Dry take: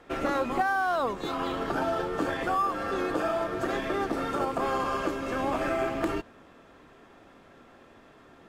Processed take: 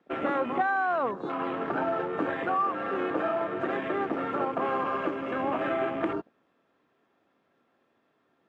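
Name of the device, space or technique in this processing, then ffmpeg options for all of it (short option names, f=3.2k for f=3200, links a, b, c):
over-cleaned archive recording: -af "highpass=140,lowpass=5.5k,afwtdn=0.0112"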